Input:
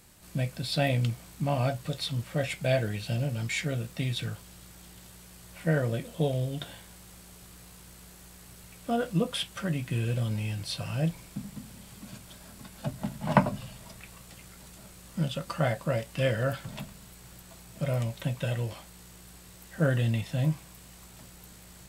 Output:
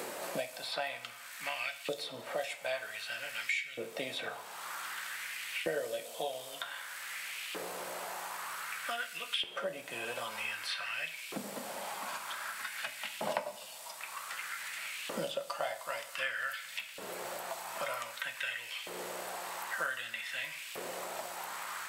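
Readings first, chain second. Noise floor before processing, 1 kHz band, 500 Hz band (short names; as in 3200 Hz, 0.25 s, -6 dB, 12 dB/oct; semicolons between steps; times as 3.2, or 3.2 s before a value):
-51 dBFS, -2.0 dB, -6.5 dB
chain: LFO high-pass saw up 0.53 Hz 420–2900 Hz; two-slope reverb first 0.64 s, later 1.7 s, from -24 dB, DRR 9 dB; three-band squash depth 100%; gain -2.5 dB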